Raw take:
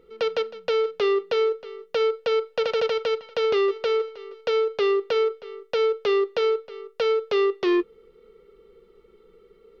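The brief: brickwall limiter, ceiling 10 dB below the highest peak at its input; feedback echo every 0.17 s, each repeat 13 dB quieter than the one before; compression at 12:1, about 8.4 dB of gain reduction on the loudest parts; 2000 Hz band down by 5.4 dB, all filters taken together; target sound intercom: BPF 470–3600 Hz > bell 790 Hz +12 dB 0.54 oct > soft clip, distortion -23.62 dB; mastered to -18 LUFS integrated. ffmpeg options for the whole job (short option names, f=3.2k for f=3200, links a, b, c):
-af "equalizer=f=2k:t=o:g=-6.5,acompressor=threshold=-28dB:ratio=12,alimiter=level_in=5.5dB:limit=-24dB:level=0:latency=1,volume=-5.5dB,highpass=470,lowpass=3.6k,equalizer=f=790:t=o:w=0.54:g=12,aecho=1:1:170|340|510:0.224|0.0493|0.0108,asoftclip=threshold=-27dB,volume=21dB"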